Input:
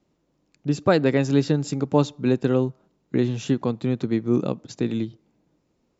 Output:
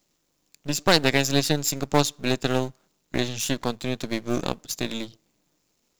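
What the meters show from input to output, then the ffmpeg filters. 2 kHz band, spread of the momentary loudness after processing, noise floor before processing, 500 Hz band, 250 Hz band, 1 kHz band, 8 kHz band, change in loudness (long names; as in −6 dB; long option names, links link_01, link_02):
+6.0 dB, 12 LU, −71 dBFS, −3.5 dB, −5.5 dB, +2.5 dB, can't be measured, −1.5 dB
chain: -af "aeval=exprs='if(lt(val(0),0),0.251*val(0),val(0))':channel_layout=same,aeval=exprs='0.596*(cos(1*acos(clip(val(0)/0.596,-1,1)))-cos(1*PI/2))+0.0211*(cos(7*acos(clip(val(0)/0.596,-1,1)))-cos(7*PI/2))':channel_layout=same,crystalizer=i=9.5:c=0,volume=-1.5dB"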